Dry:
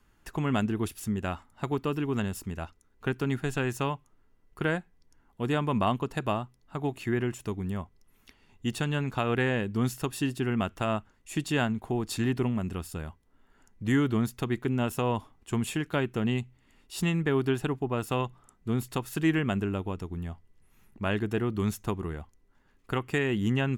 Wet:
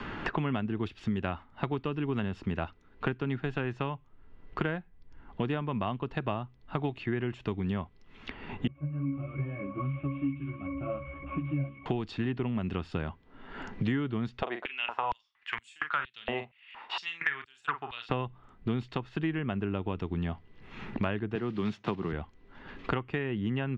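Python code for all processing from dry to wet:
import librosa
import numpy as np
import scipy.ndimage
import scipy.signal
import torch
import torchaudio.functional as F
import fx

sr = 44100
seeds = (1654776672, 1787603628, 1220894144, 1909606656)

y = fx.chain(x, sr, fx.delta_mod(bps=16000, step_db=-36.0),
    fx.octave_resonator(note='C#', decay_s=0.39),
    fx.ensemble(), at=(8.67, 11.86))
y = fx.chain(y, sr, fx.doubler(ms=42.0, db=-9),
    fx.filter_held_highpass(hz=4.3, low_hz=620.0, high_hz=8000.0), at=(14.42, 18.09))
y = fx.chain(y, sr, fx.block_float(bits=5),
    fx.highpass(hz=130.0, slope=24), at=(21.35, 22.13))
y = fx.rider(y, sr, range_db=5, speed_s=0.5)
y = scipy.signal.sosfilt(scipy.signal.butter(4, 3600.0, 'lowpass', fs=sr, output='sos'), y)
y = fx.band_squash(y, sr, depth_pct=100)
y = y * librosa.db_to_amplitude(-2.5)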